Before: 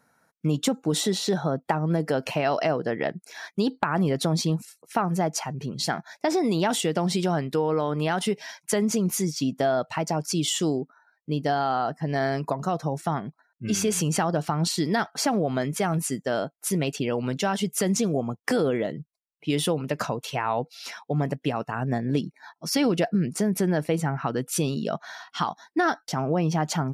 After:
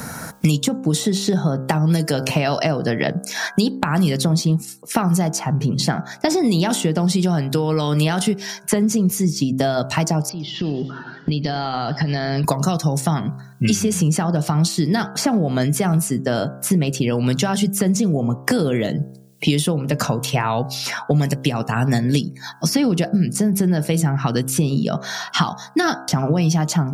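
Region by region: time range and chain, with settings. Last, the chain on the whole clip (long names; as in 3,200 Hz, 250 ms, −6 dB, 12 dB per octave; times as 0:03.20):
0:10.29–0:12.44: elliptic low-pass filter 4,900 Hz, stop band 50 dB + downward compressor, threshold −40 dBFS + feedback echo with a swinging delay time 100 ms, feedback 50%, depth 139 cents, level −18.5 dB
whole clip: bass and treble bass +10 dB, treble +7 dB; hum removal 65.81 Hz, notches 25; multiband upward and downward compressor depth 100%; level +1.5 dB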